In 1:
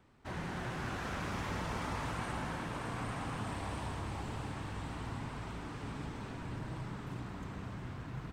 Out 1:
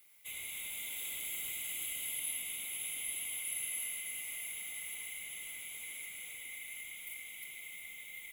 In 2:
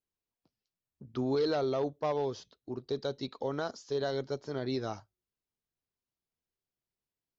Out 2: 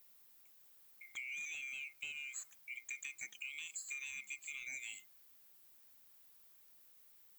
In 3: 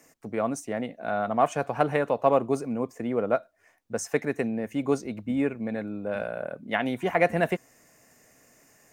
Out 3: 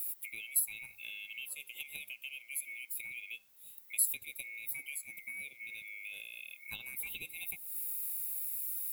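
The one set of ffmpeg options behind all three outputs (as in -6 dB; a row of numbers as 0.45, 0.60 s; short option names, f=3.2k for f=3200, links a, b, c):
-af "afftfilt=real='real(if(lt(b,920),b+92*(1-2*mod(floor(b/92),2)),b),0)':imag='imag(if(lt(b,920),b+92*(1-2*mod(floor(b/92),2)),b),0)':win_size=2048:overlap=0.75,aemphasis=mode=production:type=50fm,bandreject=f=5.7k:w=11,bandreject=f=105.4:t=h:w=4,bandreject=f=210.8:t=h:w=4,bandreject=f=316.2:t=h:w=4,bandreject=f=421.6:t=h:w=4,bandreject=f=527:t=h:w=4,bandreject=f=632.4:t=h:w=4,bandreject=f=737.8:t=h:w=4,bandreject=f=843.2:t=h:w=4,bandreject=f=948.6:t=h:w=4,bandreject=f=1.054k:t=h:w=4,bandreject=f=1.1594k:t=h:w=4,bandreject=f=1.2648k:t=h:w=4,bandreject=f=1.3702k:t=h:w=4,adynamicequalizer=threshold=0.01:dfrequency=1100:dqfactor=0.94:tfrequency=1100:tqfactor=0.94:attack=5:release=100:ratio=0.375:range=2:mode=cutabove:tftype=bell,acompressor=threshold=-34dB:ratio=8,aexciter=amount=10.8:drive=4.3:freq=8.1k,acrusher=bits=9:mix=0:aa=0.000001,volume=-8.5dB"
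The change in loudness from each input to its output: +1.5, -10.0, -10.0 LU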